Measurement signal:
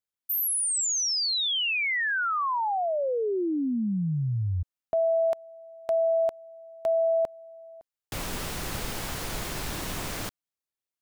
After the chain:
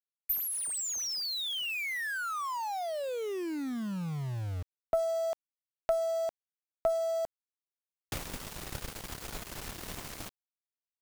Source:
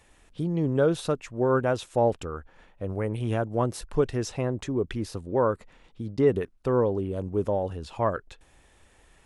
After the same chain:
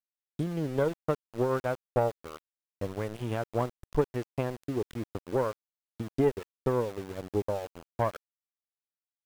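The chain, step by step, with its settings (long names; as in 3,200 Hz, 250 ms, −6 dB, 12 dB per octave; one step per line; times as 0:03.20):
transient designer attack +8 dB, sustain −11 dB
tube saturation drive 9 dB, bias 0.5
centre clipping without the shift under −34 dBFS
level −5.5 dB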